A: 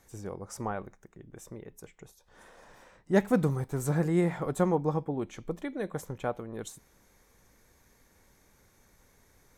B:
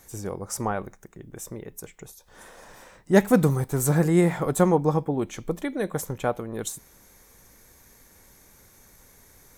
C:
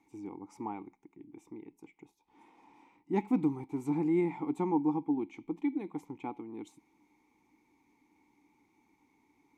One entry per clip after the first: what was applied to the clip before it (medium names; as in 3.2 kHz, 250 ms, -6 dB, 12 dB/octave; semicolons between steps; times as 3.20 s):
treble shelf 7.3 kHz +10.5 dB; trim +6.5 dB
vowel filter u; trim +2 dB